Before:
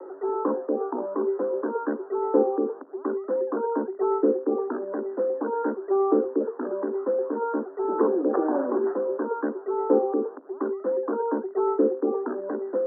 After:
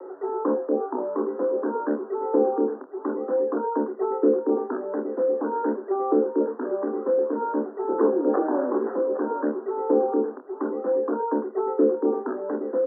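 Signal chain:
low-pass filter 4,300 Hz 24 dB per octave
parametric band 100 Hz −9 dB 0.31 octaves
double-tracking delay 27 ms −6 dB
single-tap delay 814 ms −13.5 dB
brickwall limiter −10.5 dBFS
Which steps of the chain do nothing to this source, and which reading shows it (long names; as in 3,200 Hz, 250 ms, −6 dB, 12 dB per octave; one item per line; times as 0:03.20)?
low-pass filter 4,300 Hz: nothing at its input above 1,400 Hz
parametric band 100 Hz: nothing at its input below 190 Hz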